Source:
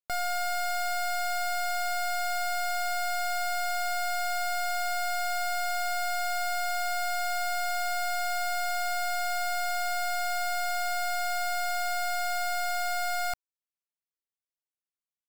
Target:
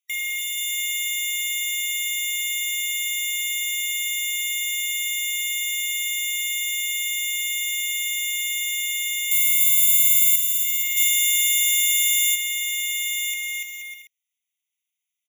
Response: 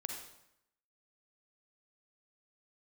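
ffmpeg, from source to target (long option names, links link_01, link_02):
-filter_complex "[0:a]asettb=1/sr,asplit=3[link_01][link_02][link_03];[link_01]atrim=end=9.314[link_04];[link_02]atrim=start=9.31:end=10.36,asetpts=PTS-STARTPTS,afade=type=in:duration=0.004:curve=qsin,afade=type=out:start_time=1.046:duration=0.004:curve=qsin,aemphasis=mode=production:type=bsi[link_05];[link_03]atrim=start=10.356[link_06];[link_04][link_05]acrossfade=duration=0.004:curve1=hsin:curve2=qsin[link_07];[link_07][link_06]acrossfade=duration=0.004:curve1=qsin:curve2=hsin,aecho=1:1:290|478.5|601|680.7|732.4:0.631|0.398|0.251|0.158|0.1,asplit=2[link_08][link_09];[link_09]alimiter=limit=-19dB:level=0:latency=1,volume=-1.5dB[link_10];[link_08][link_10]amix=inputs=2:normalize=0,asplit=3[link_11][link_12][link_13];[link_11]afade=type=out:start_time=10.96:duration=0.02[link_14];[link_12]highshelf=frequency=2800:gain=8.5,afade=type=in:start_time=10.96:duration=0.02,afade=type=out:start_time=12.34:duration=0.02[link_15];[link_13]afade=type=in:start_time=12.34:duration=0.02[link_16];[link_14][link_15][link_16]amix=inputs=3:normalize=0,afftfilt=real='re*eq(mod(floor(b*sr/1024/1900),2),1)':imag='im*eq(mod(floor(b*sr/1024/1900),2),1)':win_size=1024:overlap=0.75,volume=7dB"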